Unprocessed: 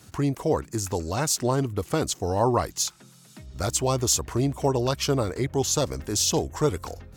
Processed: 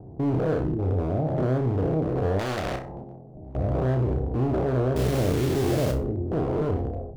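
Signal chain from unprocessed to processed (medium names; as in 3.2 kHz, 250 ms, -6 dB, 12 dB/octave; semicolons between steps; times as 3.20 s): spectrogram pixelated in time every 200 ms; gate -42 dBFS, range -9 dB; steep low-pass 780 Hz 72 dB/octave; transient shaper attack -2 dB, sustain +8 dB; in parallel at -2 dB: compression 12:1, threshold -41 dBFS, peak gain reduction 19.5 dB; on the sum: peak limiter -21 dBFS, peak gain reduction 5.5 dB; overload inside the chain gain 27 dB; 4.96–5.92 s: companded quantiser 4-bit; flutter echo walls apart 5.4 m, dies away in 0.27 s; on a send at -24 dB: reverberation RT60 0.45 s, pre-delay 10 ms; 2.39–3.56 s: on the sum: spectrum-flattening compressor 2:1; trim +5 dB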